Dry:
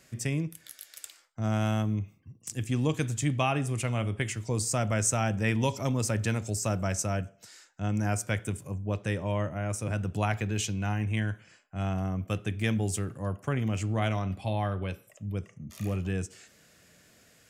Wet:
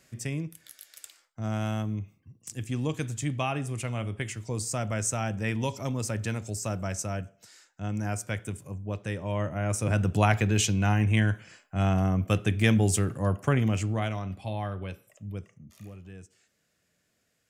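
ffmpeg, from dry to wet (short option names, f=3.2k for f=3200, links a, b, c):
-af "volume=6dB,afade=t=in:st=9.21:d=0.8:silence=0.375837,afade=t=out:st=13.47:d=0.63:silence=0.354813,afade=t=out:st=15.31:d=0.61:silence=0.266073"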